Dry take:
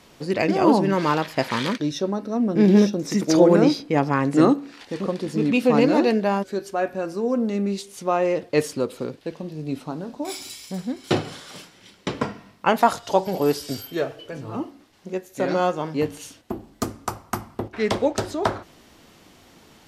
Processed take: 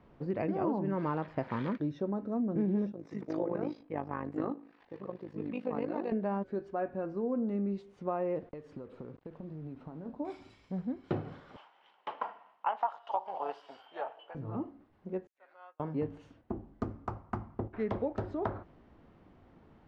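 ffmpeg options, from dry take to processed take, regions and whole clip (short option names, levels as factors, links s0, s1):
-filter_complex "[0:a]asettb=1/sr,asplit=3[s0][s1][s2];[s0]atrim=end=2.924[s3];[s1]atrim=start=2.92:end=6.12,asetpts=PTS-STARTPTS,afade=t=in:d=0.004:c=qsin,afade=t=out:st=3.196:d=0.004:c=qsin,lowshelf=f=330:g=-12,bandreject=f=1400:w=14,tremolo=f=52:d=0.75[s4];[s2]atrim=start=6.116[s5];[s3][s4]acrossfade=d=0.004:c1=hsin:c2=qsin[s6];[s6][s5]acrossfade=d=0.004:c1=qsin:c2=hsin,asettb=1/sr,asplit=3[s7][s8][s9];[s7]atrim=end=8.394[s10];[s8]atrim=start=8.39:end=10.06,asetpts=PTS-STARTPTS,afade=t=in:d=0.004:c=qsin,afade=t=out:st=1.666:d=0.004:c=qsin,acompressor=threshold=0.0251:ratio=20:attack=3.2:release=140:knee=1:detection=peak,acrusher=bits=7:mix=0:aa=0.5[s11];[s9]atrim=start=10.056[s12];[s10][s11]acrossfade=d=0.004:c1=hsin:c2=qsin[s13];[s13][s12]acrossfade=d=0.004:c1=qsin:c2=hsin,asettb=1/sr,asplit=3[s14][s15][s16];[s14]atrim=end=11.564[s17];[s15]atrim=start=11.56:end=14.35,asetpts=PTS-STARTPTS,afade=t=in:d=0.004:c=qsin,afade=t=out:st=2.786:d=0.004:c=qsin,equalizer=f=3000:t=o:w=0.35:g=11,tremolo=f=260:d=0.571,highpass=f=850:t=q:w=3.3[s18];[s16]atrim=start=14.346[s19];[s17][s18]acrossfade=d=0.004:c1=hsin:c2=qsin[s20];[s20][s19]acrossfade=d=0.004:c1=qsin:c2=hsin,asettb=1/sr,asplit=3[s21][s22][s23];[s21]atrim=end=15.274[s24];[s22]atrim=start=15.27:end=15.8,asetpts=PTS-STARTPTS,afade=t=in:d=0.004:c=qsin,afade=t=out:st=0.526:d=0.004:c=qsin,aderivative,agate=range=0.0224:threshold=0.01:ratio=3:release=100:detection=peak,highpass=710,lowpass=2600[s25];[s23]atrim=start=15.796[s26];[s24][s25]acrossfade=d=0.004:c1=hsin:c2=qsin[s27];[s27][s26]acrossfade=d=0.004:c1=qsin:c2=hsin,lowpass=1400,lowshelf=f=150:g=8.5,acompressor=threshold=0.1:ratio=4,volume=0.355"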